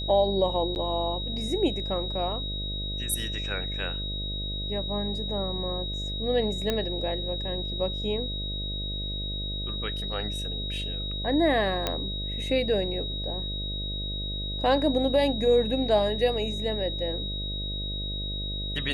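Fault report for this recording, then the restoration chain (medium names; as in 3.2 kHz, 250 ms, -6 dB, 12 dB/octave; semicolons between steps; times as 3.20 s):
buzz 50 Hz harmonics 13 -34 dBFS
whine 3.8 kHz -33 dBFS
0.75–0.76 s: dropout 9.5 ms
6.70 s: pop -13 dBFS
11.87 s: pop -11 dBFS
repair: de-click; de-hum 50 Hz, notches 13; band-stop 3.8 kHz, Q 30; interpolate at 0.75 s, 9.5 ms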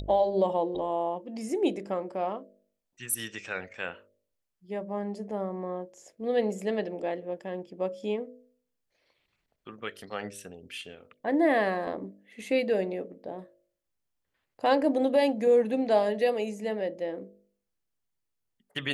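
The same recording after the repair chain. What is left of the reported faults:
nothing left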